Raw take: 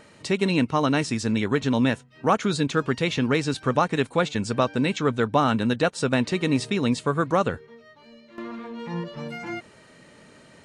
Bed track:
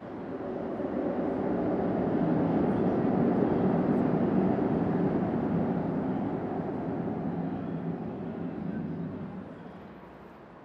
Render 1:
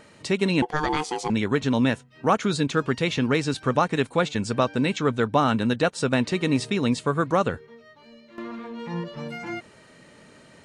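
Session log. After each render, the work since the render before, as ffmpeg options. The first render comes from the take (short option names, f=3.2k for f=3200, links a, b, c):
-filter_complex "[0:a]asettb=1/sr,asplit=3[a][b][c];[a]atrim=end=0.624[d];[b]atrim=start=0.62:end=1.3,asetpts=PTS-STARTPTS,afade=t=in:d=0.004:c=qsin,afade=t=out:st=0.676:d=0.004:c=qsin,aeval=exprs='val(0)*sin(2*PI*610*n/s)':c=same[e];[c]atrim=start=1.296[f];[d][e]acrossfade=d=0.004:c1=hsin:c2=qsin[g];[g][f]acrossfade=d=0.004:c1=qsin:c2=hsin"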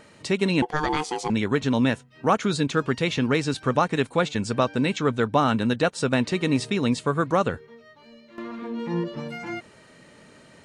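-filter_complex "[0:a]asettb=1/sr,asplit=3[a][b][c];[a]atrim=end=8.624[d];[b]atrim=start=8.62:end=9.2,asetpts=PTS-STARTPTS,afade=t=in:d=0.004:c=qsin,afade=t=out:st=0.576:d=0.004:c=qsin,equalizer=f=300:t=o:w=0.77:g=11.5[e];[c]atrim=start=9.196[f];[d][e]acrossfade=d=0.004:c1=hsin:c2=qsin[g];[g][f]acrossfade=d=0.004:c1=qsin:c2=hsin"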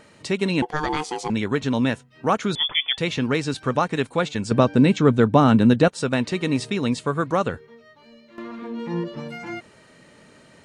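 -filter_complex "[0:a]asettb=1/sr,asplit=3[a][b][c];[a]atrim=end=2.554[d];[b]atrim=start=2.55:end=2.98,asetpts=PTS-STARTPTS,afade=t=in:d=0.004:c=qsin,afade=t=out:st=0.426:d=0.004:c=qsin,lowpass=f=3.1k:t=q:w=0.5098,lowpass=f=3.1k:t=q:w=0.6013,lowpass=f=3.1k:t=q:w=0.9,lowpass=f=3.1k:t=q:w=2.563,afreqshift=-3600[e];[c]atrim=start=2.976[f];[d][e]acrossfade=d=0.004:c1=hsin:c2=qsin[g];[g][f]acrossfade=d=0.004:c1=qsin:c2=hsin,asettb=1/sr,asplit=3[h][i][j];[h]atrim=end=4.514[k];[i]atrim=start=4.51:end=5.88,asetpts=PTS-STARTPTS,afade=t=in:d=0.004:c=qsin,afade=t=out:st=1.366:d=0.004:c=qsin,equalizer=f=170:w=0.32:g=9[l];[j]atrim=start=5.876[m];[k][l]acrossfade=d=0.004:c1=hsin:c2=qsin[n];[n][m]acrossfade=d=0.004:c1=qsin:c2=hsin"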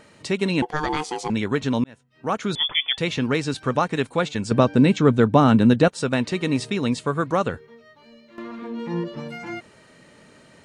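-filter_complex "[0:a]asplit=2[a][b];[a]atrim=end=1.84,asetpts=PTS-STARTPTS,afade=t=out:st=1.836:d=0.004:c=hsin[c];[b]atrim=start=1.84,asetpts=PTS-STARTPTS,afade=t=in:d=0.75[d];[c][d]concat=n=2:v=0:a=1"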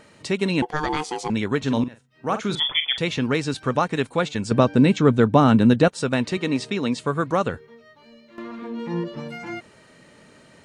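-filter_complex "[0:a]asettb=1/sr,asplit=3[a][b][c];[a]atrim=end=1.614[d];[b]atrim=start=1.61:end=3.01,asetpts=PTS-STARTPTS,afade=t=in:d=0.004:c=qsin,afade=t=out:st=1.396:d=0.004:c=qsin,asplit=2[e][f];[f]adelay=44,volume=-10dB[g];[e][g]amix=inputs=2:normalize=0,atrim=end_sample=61740[h];[c]atrim=start=3.006[i];[d][h]acrossfade=d=0.004:c1=hsin:c2=qsin[j];[j][i]acrossfade=d=0.004:c1=qsin:c2=hsin,asettb=1/sr,asplit=3[k][l][m];[k]atrim=end=6.374[n];[l]atrim=start=6.37:end=6.99,asetpts=PTS-STARTPTS,afade=t=in:d=0.004:c=qsin,afade=t=out:st=0.616:d=0.004:c=qsin,highpass=160,lowpass=7.8k[o];[m]atrim=start=6.986[p];[n][o]acrossfade=d=0.004:c1=hsin:c2=qsin[q];[q][p]acrossfade=d=0.004:c1=qsin:c2=hsin"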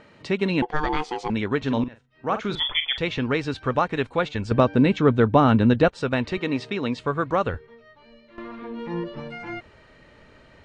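-af "lowpass=3.6k,asubboost=boost=8.5:cutoff=59"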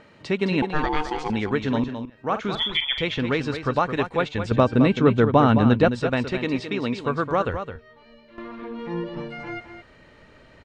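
-af "aecho=1:1:214:0.355"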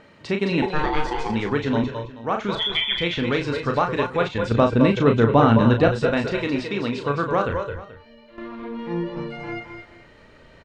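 -filter_complex "[0:a]asplit=2[a][b];[b]adelay=35,volume=-6dB[c];[a][c]amix=inputs=2:normalize=0,asplit=2[d][e];[e]aecho=0:1:216:0.335[f];[d][f]amix=inputs=2:normalize=0"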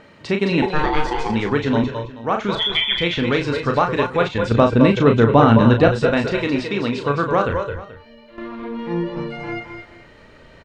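-af "volume=3.5dB,alimiter=limit=-1dB:level=0:latency=1"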